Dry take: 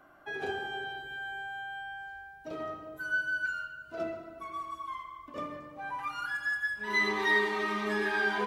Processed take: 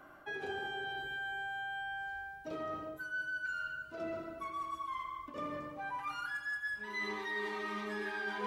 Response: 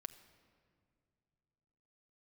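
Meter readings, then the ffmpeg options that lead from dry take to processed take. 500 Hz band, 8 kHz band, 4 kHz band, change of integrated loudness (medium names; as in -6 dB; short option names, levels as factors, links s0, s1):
-6.5 dB, no reading, -6.0 dB, -6.5 dB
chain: -af "bandreject=f=700:w=12,areverse,acompressor=threshold=0.01:ratio=6,areverse,volume=1.41"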